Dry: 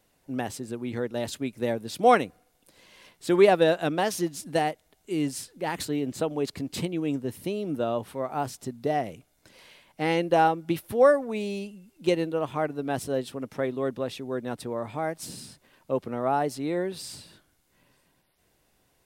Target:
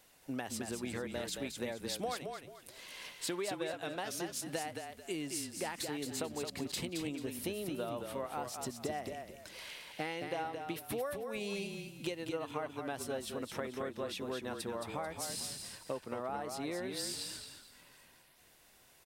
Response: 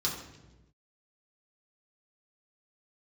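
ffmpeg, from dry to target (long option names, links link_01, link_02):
-filter_complex "[0:a]tiltshelf=frequency=630:gain=-5,acompressor=threshold=-37dB:ratio=12,asplit=2[link_01][link_02];[link_02]asplit=4[link_03][link_04][link_05][link_06];[link_03]adelay=220,afreqshift=-33,volume=-5.5dB[link_07];[link_04]adelay=440,afreqshift=-66,volume=-16dB[link_08];[link_05]adelay=660,afreqshift=-99,volume=-26.4dB[link_09];[link_06]adelay=880,afreqshift=-132,volume=-36.9dB[link_10];[link_07][link_08][link_09][link_10]amix=inputs=4:normalize=0[link_11];[link_01][link_11]amix=inputs=2:normalize=0,volume=1dB"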